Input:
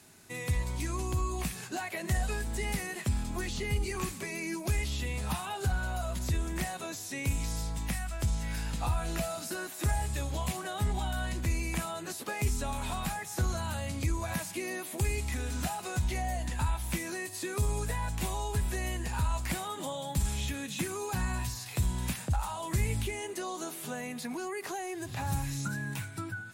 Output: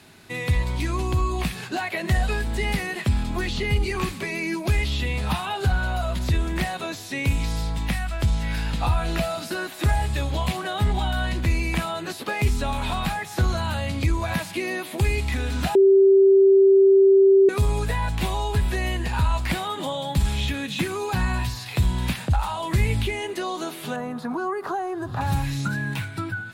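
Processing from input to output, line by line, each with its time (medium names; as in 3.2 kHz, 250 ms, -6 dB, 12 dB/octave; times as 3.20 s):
15.75–17.49 s: bleep 389 Hz -19.5 dBFS
23.96–25.21 s: resonant high shelf 1.7 kHz -9 dB, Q 3
whole clip: resonant high shelf 5.1 kHz -7.5 dB, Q 1.5; trim +8.5 dB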